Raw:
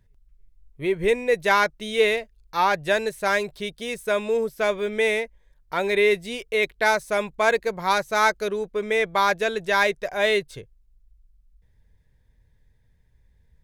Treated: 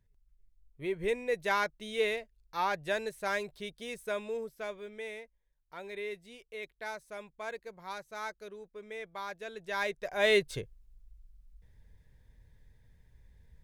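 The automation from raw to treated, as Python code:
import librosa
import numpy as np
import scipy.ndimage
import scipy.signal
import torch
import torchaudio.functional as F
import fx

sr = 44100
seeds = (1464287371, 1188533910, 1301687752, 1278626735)

y = fx.gain(x, sr, db=fx.line((4.02, -10.5), (5.05, -20.0), (9.37, -20.0), (10.17, -7.0), (10.54, 1.0)))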